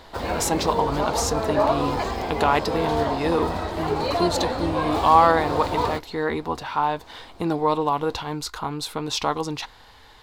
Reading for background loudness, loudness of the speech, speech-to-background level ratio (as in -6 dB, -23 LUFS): -25.5 LUFS, -25.0 LUFS, 0.5 dB